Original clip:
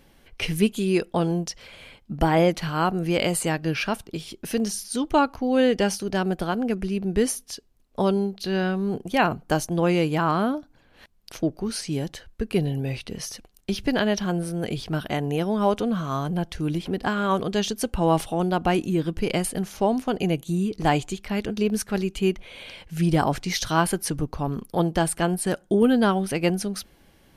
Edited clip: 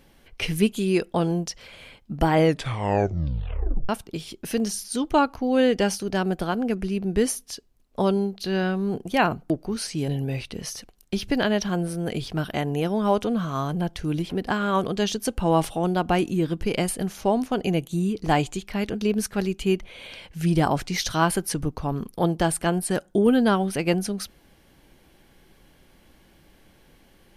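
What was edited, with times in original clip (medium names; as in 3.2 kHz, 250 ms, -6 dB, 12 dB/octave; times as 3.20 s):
2.33 s: tape stop 1.56 s
9.50–11.44 s: delete
12.02–12.64 s: delete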